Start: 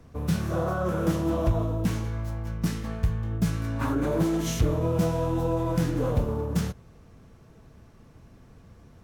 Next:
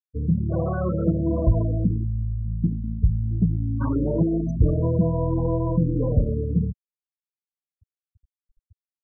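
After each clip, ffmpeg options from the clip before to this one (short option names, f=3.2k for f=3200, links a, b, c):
-af "lowshelf=f=280:g=6,afftfilt=real='re*gte(hypot(re,im),0.0891)':imag='im*gte(hypot(re,im),0.0891)':win_size=1024:overlap=0.75"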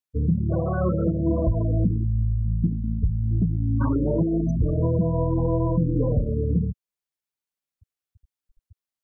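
-af "alimiter=limit=-16.5dB:level=0:latency=1:release=347,volume=3.5dB"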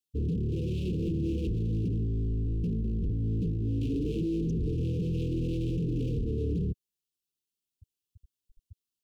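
-af "asoftclip=type=hard:threshold=-29dB,asuperstop=centerf=1100:order=20:qfactor=0.52,volume=1.5dB"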